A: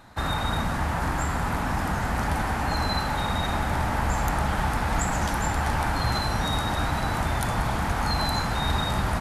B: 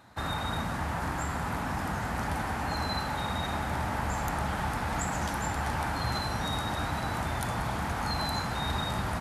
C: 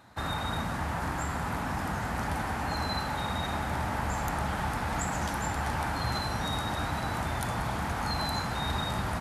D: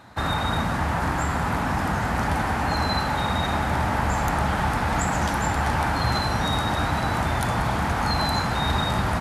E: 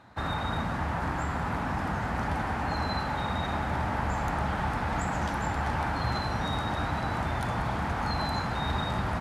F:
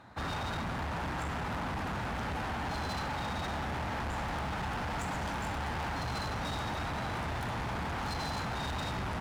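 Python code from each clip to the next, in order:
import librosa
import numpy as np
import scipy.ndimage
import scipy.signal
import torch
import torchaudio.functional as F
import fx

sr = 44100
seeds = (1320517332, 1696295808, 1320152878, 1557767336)

y1 = scipy.signal.sosfilt(scipy.signal.butter(2, 63.0, 'highpass', fs=sr, output='sos'), x)
y1 = y1 * librosa.db_to_amplitude(-5.0)
y2 = y1
y3 = fx.high_shelf(y2, sr, hz=7100.0, db=-5.5)
y3 = y3 * librosa.db_to_amplitude(8.0)
y4 = fx.lowpass(y3, sr, hz=3800.0, slope=6)
y4 = y4 * librosa.db_to_amplitude(-6.0)
y5 = np.clip(10.0 ** (33.5 / 20.0) * y4, -1.0, 1.0) / 10.0 ** (33.5 / 20.0)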